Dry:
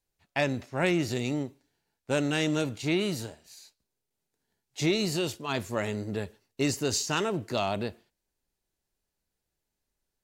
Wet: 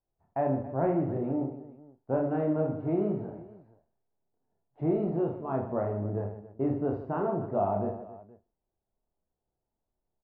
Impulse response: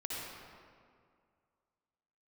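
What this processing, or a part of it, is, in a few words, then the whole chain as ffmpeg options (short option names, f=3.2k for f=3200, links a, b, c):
under water: -filter_complex "[0:a]lowpass=f=1.1k:w=0.5412,lowpass=f=1.1k:w=1.3066,equalizer=f=690:t=o:w=0.38:g=6,asplit=2[a][b];[b]adelay=38,volume=-12dB[c];[a][c]amix=inputs=2:normalize=0,aecho=1:1:30|78|154.8|277.7|474.3:0.631|0.398|0.251|0.158|0.1,volume=-2.5dB"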